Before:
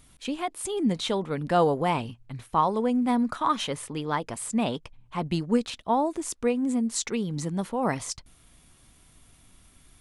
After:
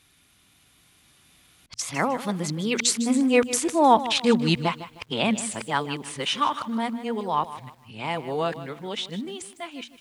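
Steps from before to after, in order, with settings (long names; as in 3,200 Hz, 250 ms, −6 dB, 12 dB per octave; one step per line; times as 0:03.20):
played backwards from end to start
source passing by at 0:03.81, 17 m/s, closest 19 metres
high-pass filter 82 Hz
parametric band 2,900 Hz +8.5 dB 2.4 octaves
hum removal 118.4 Hz, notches 2
feedback echo at a low word length 154 ms, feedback 35%, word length 9 bits, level −14 dB
level +5.5 dB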